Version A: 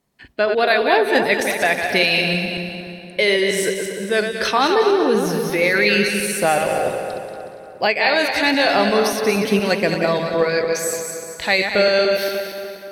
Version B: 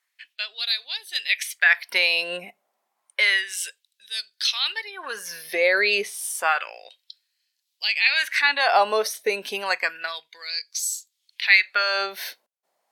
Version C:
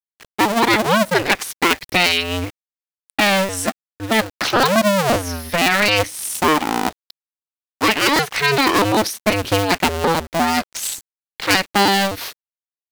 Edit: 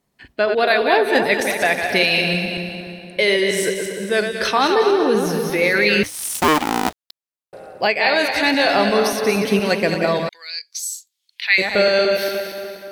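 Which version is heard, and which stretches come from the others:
A
6.03–7.53 s: from C
10.29–11.58 s: from B

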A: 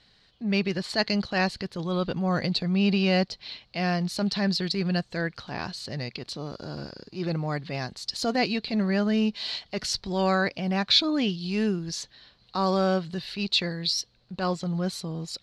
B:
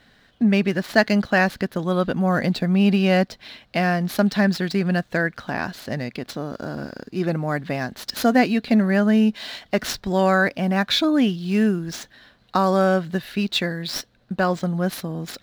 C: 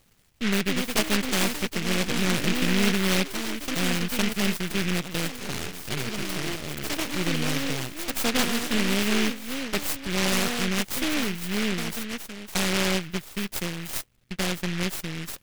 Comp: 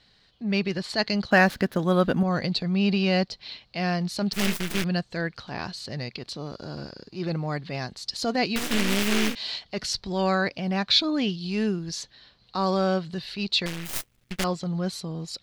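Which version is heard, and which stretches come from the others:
A
1.31–2.23 s: from B
4.33–4.84 s: from C
8.56–9.35 s: from C
13.66–14.44 s: from C

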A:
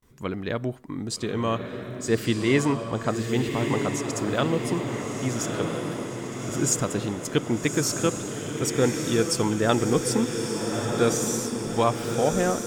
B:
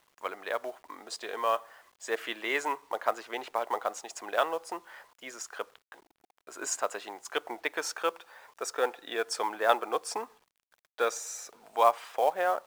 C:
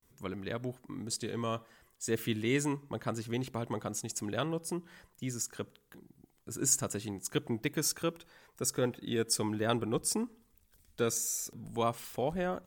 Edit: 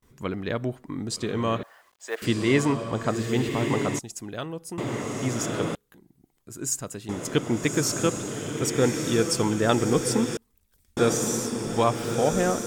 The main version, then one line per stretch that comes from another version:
A
1.63–2.22 s: from B
3.99–4.78 s: from C
5.75–7.09 s: from C
10.37–10.97 s: from C

